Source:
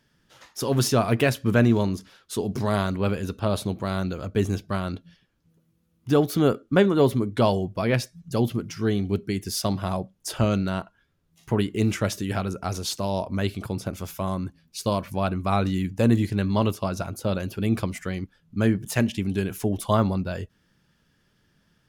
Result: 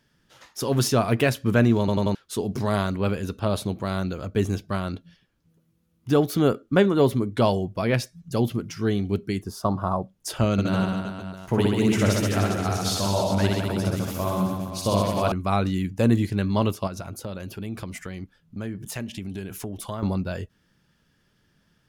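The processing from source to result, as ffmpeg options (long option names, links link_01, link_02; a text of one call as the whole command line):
ffmpeg -i in.wav -filter_complex "[0:a]asplit=3[link_01][link_02][link_03];[link_01]afade=type=out:start_time=9.41:duration=0.02[link_04];[link_02]highshelf=frequency=1600:width_type=q:width=3:gain=-11,afade=type=in:start_time=9.41:duration=0.02,afade=type=out:start_time=10.01:duration=0.02[link_05];[link_03]afade=type=in:start_time=10.01:duration=0.02[link_06];[link_04][link_05][link_06]amix=inputs=3:normalize=0,asettb=1/sr,asplit=3[link_07][link_08][link_09];[link_07]atrim=end=10.524[link_10];[link_08]atrim=start=10.52:end=15.32,asetpts=PTS-STARTPTS,afade=type=in:duration=0.004:curve=qsin,afade=type=out:start_time=4.796:duration=0.004:curve=qsin,aecho=1:1:60|129|208.4|299.6|404.5|525.2|664:0.794|0.631|0.501|0.398|0.316|0.251|0.2,atrim=end_sample=211680[link_11];[link_09]atrim=start=15.316[link_12];[link_10][link_11]acrossfade=duration=0.004:curve1=hsin:curve2=qsin[link_13];[link_13][link_12]acrossfade=duration=0.004:curve1=qsin:curve2=hsin,asettb=1/sr,asplit=3[link_14][link_15][link_16];[link_14]atrim=end=16.874[link_17];[link_15]atrim=start=16.87:end=20.03,asetpts=PTS-STARTPTS,afade=type=in:duration=0.004:curve=qsin,afade=type=out:start_time=3.156:duration=0.004:curve=qsin,acompressor=threshold=-31dB:ratio=3:attack=3.2:release=140:knee=1:detection=peak[link_18];[link_16]atrim=start=20.026[link_19];[link_17][link_18]acrossfade=duration=0.004:curve1=hsin:curve2=qsin[link_20];[link_20][link_19]acrossfade=duration=0.004:curve1=qsin:curve2=hsin,asplit=5[link_21][link_22][link_23][link_24][link_25];[link_21]atrim=end=1.882[link_26];[link_22]atrim=start=1.788:end=1.882[link_27];[link_23]atrim=start=1.788:end=1.882[link_28];[link_24]atrim=start=1.788:end=1.882[link_29];[link_25]atrim=start=2.148[link_30];[link_26][link_27]acrossfade=duration=0.004:curve1=hsin:curve2=hsin[link_31];[link_31][link_28]acrossfade=duration=0.004:curve1=hsin:curve2=hsin[link_32];[link_32][link_29]acrossfade=duration=0.004:curve1=hsin:curve2=hsin[link_33];[link_33][link_30]acrossfade=duration=0.004:curve1=hsin:curve2=hsin" out.wav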